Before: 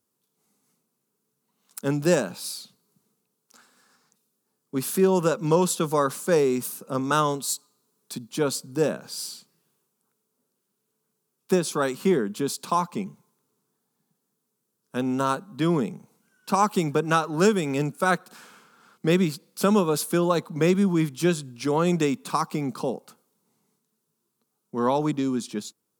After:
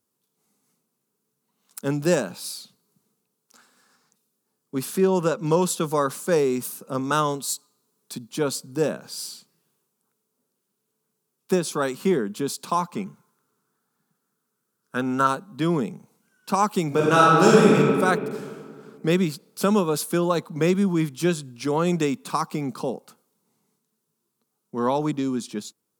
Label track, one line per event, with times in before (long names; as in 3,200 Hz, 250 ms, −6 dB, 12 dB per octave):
4.850000	5.460000	high-shelf EQ 10,000 Hz −8.5 dB
12.940000	15.270000	parametric band 1,400 Hz +11.5 dB 0.56 octaves
16.870000	17.750000	thrown reverb, RT60 2.2 s, DRR −6 dB